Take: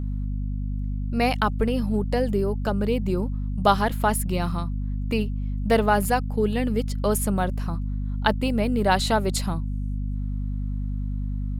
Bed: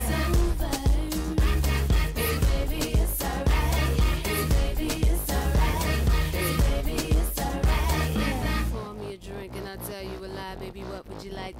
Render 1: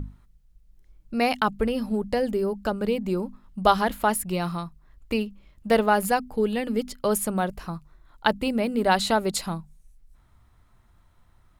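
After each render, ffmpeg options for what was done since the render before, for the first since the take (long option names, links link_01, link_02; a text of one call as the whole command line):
ffmpeg -i in.wav -af "bandreject=frequency=50:width_type=h:width=6,bandreject=frequency=100:width_type=h:width=6,bandreject=frequency=150:width_type=h:width=6,bandreject=frequency=200:width_type=h:width=6,bandreject=frequency=250:width_type=h:width=6" out.wav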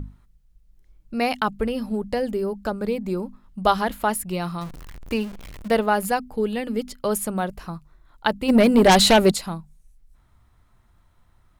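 ffmpeg -i in.wav -filter_complex "[0:a]asettb=1/sr,asplit=3[link_01][link_02][link_03];[link_01]atrim=end=2.664[link_04];[link_02]atrim=start=2.66:end=3.14,asetpts=PTS-STARTPTS,afade=type=in:duration=0.004:curve=qsin,afade=type=out:start_time=0.476:duration=0.004:curve=qsin,bandreject=frequency=2900:width=7.5[link_05];[link_03]atrim=start=3.136[link_06];[link_04][link_05]acrossfade=duration=0.004:curve1=hsin:curve2=qsin[link_07];[link_07][link_06]acrossfade=duration=0.004:curve1=qsin:curve2=hsin,asettb=1/sr,asplit=3[link_08][link_09][link_10];[link_08]atrim=end=4.614[link_11];[link_09]atrim=start=4.61:end=5.68,asetpts=PTS-STARTPTS,afade=type=in:duration=0.004:curve=qsin,afade=type=out:start_time=1.066:duration=0.004:curve=qsin,aeval=exprs='val(0)+0.5*0.02*sgn(val(0))':channel_layout=same[link_12];[link_10]atrim=start=5.676[link_13];[link_11][link_12]acrossfade=duration=0.004:curve1=hsin:curve2=qsin[link_14];[link_14][link_13]acrossfade=duration=0.004:curve1=qsin:curve2=hsin,asplit=3[link_15][link_16][link_17];[link_15]afade=type=out:start_time=8.48:duration=0.02[link_18];[link_16]aeval=exprs='0.355*sin(PI/2*2.51*val(0)/0.355)':channel_layout=same,afade=type=in:start_time=8.48:duration=0.02,afade=type=out:start_time=9.32:duration=0.02[link_19];[link_17]afade=type=in:start_time=9.32:duration=0.02[link_20];[link_18][link_19][link_20]amix=inputs=3:normalize=0" out.wav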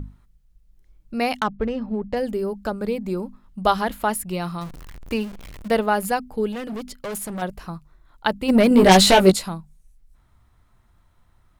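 ffmpeg -i in.wav -filter_complex "[0:a]asplit=3[link_01][link_02][link_03];[link_01]afade=type=out:start_time=1.39:duration=0.02[link_04];[link_02]adynamicsmooth=sensitivity=2:basefreq=1800,afade=type=in:start_time=1.39:duration=0.02,afade=type=out:start_time=2.15:duration=0.02[link_05];[link_03]afade=type=in:start_time=2.15:duration=0.02[link_06];[link_04][link_05][link_06]amix=inputs=3:normalize=0,asettb=1/sr,asplit=3[link_07][link_08][link_09];[link_07]atrim=end=6.524[link_10];[link_08]atrim=start=6.52:end=7.42,asetpts=PTS-STARTPTS,afade=type=in:duration=0.004:curve=qsin,afade=type=out:start_time=0.896:duration=0.004:curve=qsin,asoftclip=type=hard:threshold=-27.5dB[link_11];[link_09]atrim=start=7.416[link_12];[link_10][link_11]acrossfade=duration=0.004:curve1=hsin:curve2=qsin[link_13];[link_13][link_12]acrossfade=duration=0.004:curve1=qsin:curve2=hsin,asettb=1/sr,asplit=3[link_14][link_15][link_16];[link_14]atrim=end=8.694[link_17];[link_15]atrim=start=8.69:end=9.49,asetpts=PTS-STARTPTS,afade=type=in:duration=0.004:curve=qsin,afade=type=out:start_time=0.796:duration=0.004:curve=qsin,asplit=2[link_18][link_19];[link_19]adelay=16,volume=-3dB[link_20];[link_18][link_20]amix=inputs=2:normalize=0,atrim=end_sample=35280[link_21];[link_16]atrim=start=9.486[link_22];[link_17][link_21]acrossfade=duration=0.004:curve1=hsin:curve2=qsin[link_23];[link_23][link_22]acrossfade=duration=0.004:curve1=qsin:curve2=hsin" out.wav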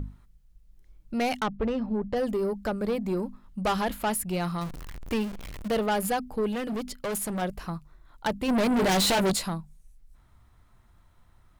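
ffmpeg -i in.wav -af "asoftclip=type=tanh:threshold=-21.5dB" out.wav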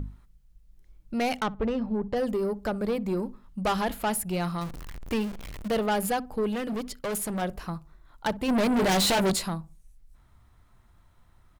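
ffmpeg -i in.wav -filter_complex "[0:a]asplit=2[link_01][link_02];[link_02]adelay=62,lowpass=frequency=1000:poles=1,volume=-20dB,asplit=2[link_03][link_04];[link_04]adelay=62,lowpass=frequency=1000:poles=1,volume=0.37,asplit=2[link_05][link_06];[link_06]adelay=62,lowpass=frequency=1000:poles=1,volume=0.37[link_07];[link_01][link_03][link_05][link_07]amix=inputs=4:normalize=0" out.wav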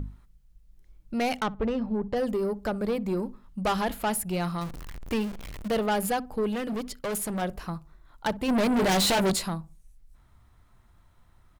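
ffmpeg -i in.wav -af anull out.wav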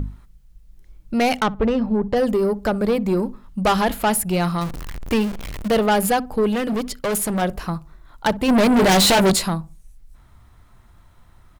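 ffmpeg -i in.wav -af "volume=8.5dB" out.wav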